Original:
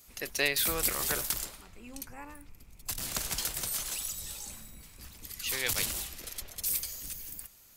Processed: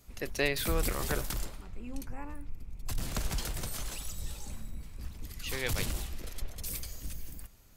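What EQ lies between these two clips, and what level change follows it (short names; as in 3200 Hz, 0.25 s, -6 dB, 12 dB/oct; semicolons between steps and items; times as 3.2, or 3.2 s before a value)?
tilt -2.5 dB/oct; 0.0 dB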